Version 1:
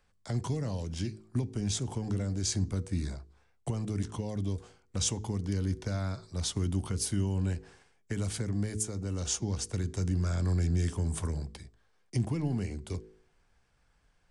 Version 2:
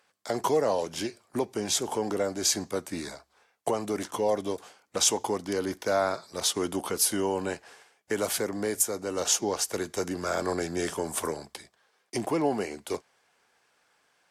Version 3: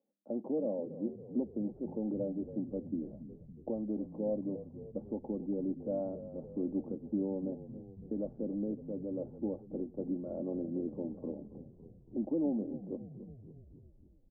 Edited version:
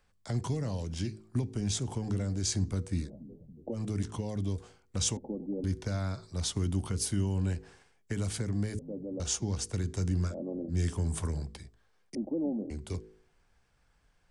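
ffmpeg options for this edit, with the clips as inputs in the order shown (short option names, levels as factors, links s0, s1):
-filter_complex "[2:a]asplit=5[s0][s1][s2][s3][s4];[0:a]asplit=6[s5][s6][s7][s8][s9][s10];[s5]atrim=end=3.1[s11];[s0]atrim=start=3:end=3.81[s12];[s6]atrim=start=3.71:end=5.172[s13];[s1]atrim=start=5.168:end=5.642[s14];[s7]atrim=start=5.638:end=8.792[s15];[s2]atrim=start=8.788:end=9.202[s16];[s8]atrim=start=9.198:end=10.35[s17];[s3]atrim=start=10.25:end=10.78[s18];[s9]atrim=start=10.68:end=12.152[s19];[s4]atrim=start=12.148:end=12.702[s20];[s10]atrim=start=12.698[s21];[s11][s12]acrossfade=d=0.1:c1=tri:c2=tri[s22];[s22][s13]acrossfade=d=0.1:c1=tri:c2=tri[s23];[s23][s14]acrossfade=d=0.004:c1=hsin:c2=hsin[s24];[s24][s15]acrossfade=d=0.004:c1=hsin:c2=hsin[s25];[s25][s16]acrossfade=d=0.004:c1=hsin:c2=hsin[s26];[s26][s17]acrossfade=d=0.004:c1=hsin:c2=hsin[s27];[s27][s18]acrossfade=d=0.1:c1=tri:c2=tri[s28];[s28][s19]acrossfade=d=0.1:c1=tri:c2=tri[s29];[s29][s20]acrossfade=d=0.004:c1=hsin:c2=hsin[s30];[s30][s21]acrossfade=d=0.004:c1=hsin:c2=hsin"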